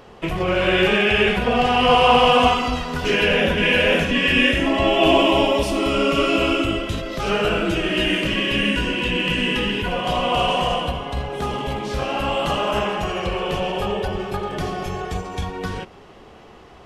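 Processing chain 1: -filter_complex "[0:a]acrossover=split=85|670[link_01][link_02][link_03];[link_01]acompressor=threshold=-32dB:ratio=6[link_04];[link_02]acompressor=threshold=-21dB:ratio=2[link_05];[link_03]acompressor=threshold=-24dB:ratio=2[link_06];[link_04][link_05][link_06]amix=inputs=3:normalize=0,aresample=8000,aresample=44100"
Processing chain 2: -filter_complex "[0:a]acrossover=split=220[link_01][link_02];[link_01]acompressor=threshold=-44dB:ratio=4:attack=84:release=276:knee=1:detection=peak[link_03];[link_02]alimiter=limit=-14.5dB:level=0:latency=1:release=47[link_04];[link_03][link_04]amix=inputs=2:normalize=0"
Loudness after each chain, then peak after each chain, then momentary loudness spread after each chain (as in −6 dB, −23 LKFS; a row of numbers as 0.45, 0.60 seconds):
−22.0, −23.5 LKFS; −7.0, −13.0 dBFS; 8, 7 LU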